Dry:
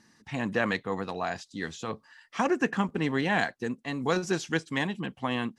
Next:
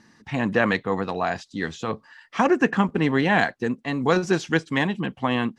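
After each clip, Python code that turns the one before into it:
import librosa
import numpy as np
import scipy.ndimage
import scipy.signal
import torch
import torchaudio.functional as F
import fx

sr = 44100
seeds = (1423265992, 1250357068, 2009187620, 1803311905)

y = fx.lowpass(x, sr, hz=3600.0, slope=6)
y = y * librosa.db_to_amplitude(7.0)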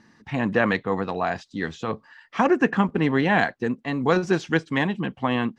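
y = fx.high_shelf(x, sr, hz=6000.0, db=-9.5)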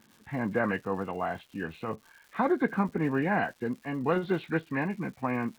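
y = fx.freq_compress(x, sr, knee_hz=1400.0, ratio=1.5)
y = fx.dmg_crackle(y, sr, seeds[0], per_s=310.0, level_db=-39.0)
y = y * librosa.db_to_amplitude(-6.5)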